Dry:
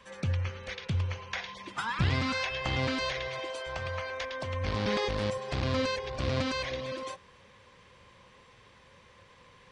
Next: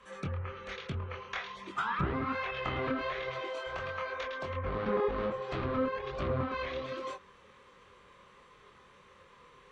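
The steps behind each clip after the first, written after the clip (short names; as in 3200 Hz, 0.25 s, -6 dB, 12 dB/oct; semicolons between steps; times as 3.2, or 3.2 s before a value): chorus voices 2, 1.2 Hz, delay 24 ms, depth 3.5 ms; treble ducked by the level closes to 1400 Hz, closed at -28.5 dBFS; thirty-one-band EQ 100 Hz -9 dB, 400 Hz +8 dB, 1250 Hz +10 dB, 5000 Hz -6 dB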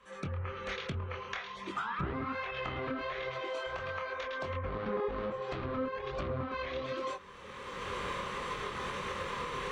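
recorder AGC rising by 23 dB/s; gain -4 dB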